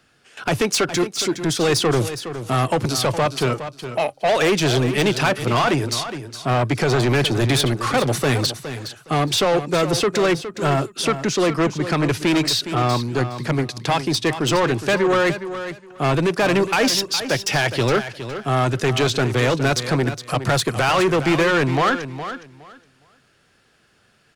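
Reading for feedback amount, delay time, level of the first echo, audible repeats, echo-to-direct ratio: 19%, 0.414 s, -11.0 dB, 2, -11.0 dB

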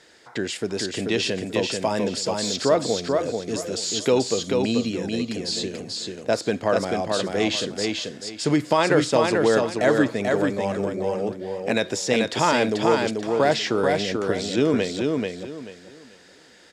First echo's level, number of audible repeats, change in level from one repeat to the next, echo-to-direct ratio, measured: -3.5 dB, 3, -12.0 dB, -3.0 dB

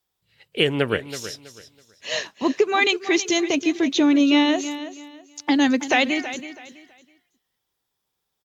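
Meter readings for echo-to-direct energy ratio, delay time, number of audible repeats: -12.5 dB, 0.326 s, 2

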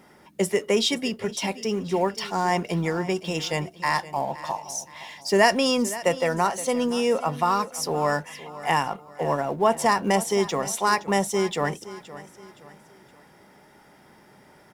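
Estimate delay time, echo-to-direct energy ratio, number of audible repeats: 0.519 s, -15.5 dB, 3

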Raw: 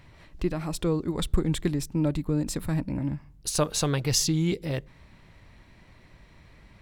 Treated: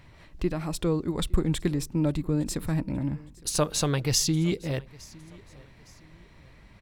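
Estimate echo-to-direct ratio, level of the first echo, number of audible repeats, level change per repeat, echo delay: -23.0 dB, -23.5 dB, 2, -8.5 dB, 0.861 s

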